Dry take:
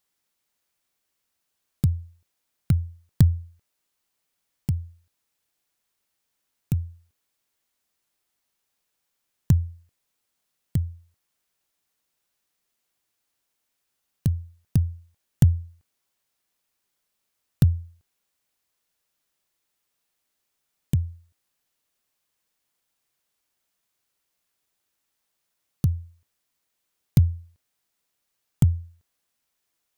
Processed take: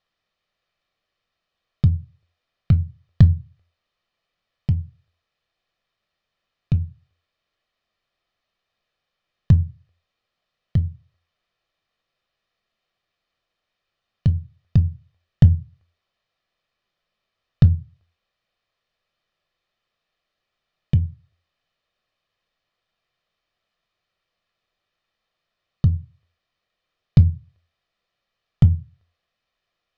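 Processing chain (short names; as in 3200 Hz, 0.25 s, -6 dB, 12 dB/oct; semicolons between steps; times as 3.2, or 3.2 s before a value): LPF 4300 Hz 24 dB/oct; reverb, pre-delay 3 ms, DRR 12 dB; gain +3 dB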